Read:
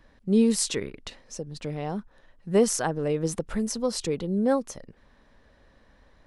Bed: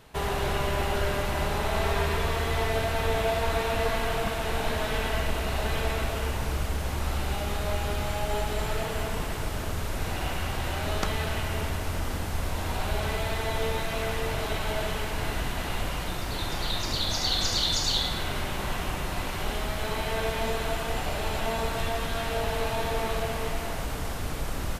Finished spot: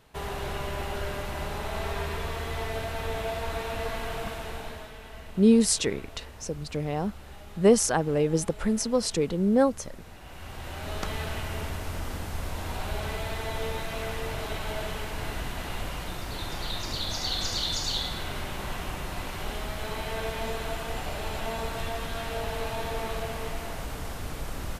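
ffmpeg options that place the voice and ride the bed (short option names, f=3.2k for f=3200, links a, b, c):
-filter_complex "[0:a]adelay=5100,volume=2dB[a];[1:a]volume=7.5dB,afade=t=out:st=4.3:d=0.64:silence=0.281838,afade=t=in:st=10.24:d=0.91:silence=0.223872[b];[a][b]amix=inputs=2:normalize=0"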